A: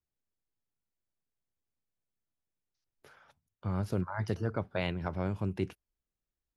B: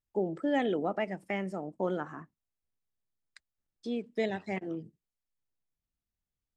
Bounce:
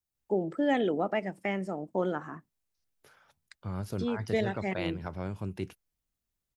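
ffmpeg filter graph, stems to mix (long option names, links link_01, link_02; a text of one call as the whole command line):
ffmpeg -i stem1.wav -i stem2.wav -filter_complex "[0:a]highshelf=frequency=4900:gain=8.5,volume=-3dB[link_01];[1:a]adelay=150,volume=2dB[link_02];[link_01][link_02]amix=inputs=2:normalize=0" out.wav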